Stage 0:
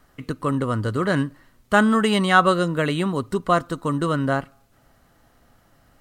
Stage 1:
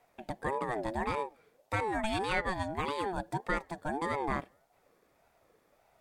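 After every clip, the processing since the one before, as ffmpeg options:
ffmpeg -i in.wav -af "alimiter=limit=-9.5dB:level=0:latency=1:release=486,aeval=exprs='val(0)*sin(2*PI*580*n/s+580*0.25/1.7*sin(2*PI*1.7*n/s))':channel_layout=same,volume=-8dB" out.wav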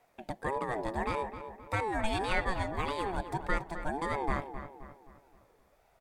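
ffmpeg -i in.wav -filter_complex "[0:a]asubboost=boost=2.5:cutoff=100,asplit=2[link_01][link_02];[link_02]adelay=262,lowpass=frequency=2400:poles=1,volume=-10dB,asplit=2[link_03][link_04];[link_04]adelay=262,lowpass=frequency=2400:poles=1,volume=0.46,asplit=2[link_05][link_06];[link_06]adelay=262,lowpass=frequency=2400:poles=1,volume=0.46,asplit=2[link_07][link_08];[link_08]adelay=262,lowpass=frequency=2400:poles=1,volume=0.46,asplit=2[link_09][link_10];[link_10]adelay=262,lowpass=frequency=2400:poles=1,volume=0.46[link_11];[link_03][link_05][link_07][link_09][link_11]amix=inputs=5:normalize=0[link_12];[link_01][link_12]amix=inputs=2:normalize=0" out.wav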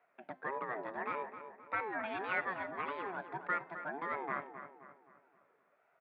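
ffmpeg -i in.wav -af "highpass=frequency=190:width=0.5412,highpass=frequency=190:width=1.3066,equalizer=frequency=210:width_type=q:width=4:gain=-9,equalizer=frequency=320:width_type=q:width=4:gain=-7,equalizer=frequency=500:width_type=q:width=4:gain=-5,equalizer=frequency=830:width_type=q:width=4:gain=-6,equalizer=frequency=1400:width_type=q:width=4:gain=6,lowpass=frequency=2500:width=0.5412,lowpass=frequency=2500:width=1.3066,bandreject=frequency=260.9:width_type=h:width=4,bandreject=frequency=521.8:width_type=h:width=4,bandreject=frequency=782.7:width_type=h:width=4,bandreject=frequency=1043.6:width_type=h:width=4,bandreject=frequency=1304.5:width_type=h:width=4,bandreject=frequency=1565.4:width_type=h:width=4,bandreject=frequency=1826.3:width_type=h:width=4,bandreject=frequency=2087.2:width_type=h:width=4,bandreject=frequency=2348.1:width_type=h:width=4,bandreject=frequency=2609:width_type=h:width=4,bandreject=frequency=2869.9:width_type=h:width=4,bandreject=frequency=3130.8:width_type=h:width=4,bandreject=frequency=3391.7:width_type=h:width=4,bandreject=frequency=3652.6:width_type=h:width=4,bandreject=frequency=3913.5:width_type=h:width=4,bandreject=frequency=4174.4:width_type=h:width=4,bandreject=frequency=4435.3:width_type=h:width=4,bandreject=frequency=4696.2:width_type=h:width=4,bandreject=frequency=4957.1:width_type=h:width=4,bandreject=frequency=5218:width_type=h:width=4,bandreject=frequency=5478.9:width_type=h:width=4,bandreject=frequency=5739.8:width_type=h:width=4,bandreject=frequency=6000.7:width_type=h:width=4,bandreject=frequency=6261.6:width_type=h:width=4,bandreject=frequency=6522.5:width_type=h:width=4,bandreject=frequency=6783.4:width_type=h:width=4,bandreject=frequency=7044.3:width_type=h:width=4,bandreject=frequency=7305.2:width_type=h:width=4,bandreject=frequency=7566.1:width_type=h:width=4,bandreject=frequency=7827:width_type=h:width=4,bandreject=frequency=8087.9:width_type=h:width=4,bandreject=frequency=8348.8:width_type=h:width=4,bandreject=frequency=8609.7:width_type=h:width=4,bandreject=frequency=8870.6:width_type=h:width=4,bandreject=frequency=9131.5:width_type=h:width=4,bandreject=frequency=9392.4:width_type=h:width=4,bandreject=frequency=9653.3:width_type=h:width=4,bandreject=frequency=9914.2:width_type=h:width=4,volume=-3dB" out.wav

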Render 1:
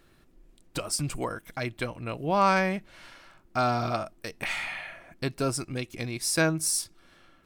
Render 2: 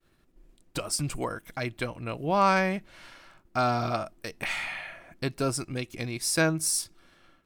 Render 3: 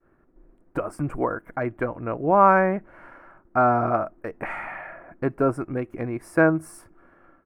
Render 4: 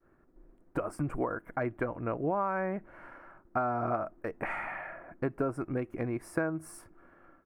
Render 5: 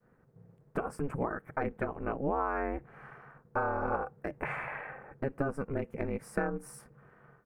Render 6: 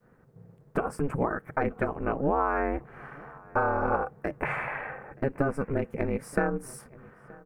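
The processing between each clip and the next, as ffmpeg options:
ffmpeg -i in.wav -af "agate=range=-33dB:threshold=-54dB:ratio=3:detection=peak" out.wav
ffmpeg -i in.wav -af "firequalizer=gain_entry='entry(160,0);entry(300,6);entry(1500,4);entry(3700,-30);entry(10000,-19)':delay=0.05:min_phase=1,volume=2dB" out.wav
ffmpeg -i in.wav -af "acompressor=threshold=-23dB:ratio=16,volume=-3.5dB" out.wav
ffmpeg -i in.wav -af "aeval=exprs='val(0)*sin(2*PI*140*n/s)':channel_layout=same,volume=2dB" out.wav
ffmpeg -i in.wav -filter_complex "[0:a]asplit=2[link_01][link_02];[link_02]adelay=926,lowpass=frequency=2900:poles=1,volume=-23dB,asplit=2[link_03][link_04];[link_04]adelay=926,lowpass=frequency=2900:poles=1,volume=0.16[link_05];[link_01][link_03][link_05]amix=inputs=3:normalize=0,volume=5.5dB" out.wav

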